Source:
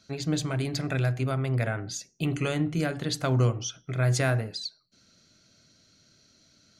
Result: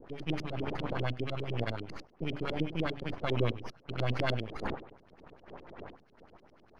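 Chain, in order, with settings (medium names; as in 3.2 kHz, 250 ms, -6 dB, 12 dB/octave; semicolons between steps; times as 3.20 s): bit-reversed sample order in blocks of 16 samples; wind noise 540 Hz -40 dBFS; peaking EQ 4.1 kHz +12.5 dB 2.1 oct; half-wave rectifier; LFO low-pass saw up 10 Hz 270–3400 Hz; trim -5 dB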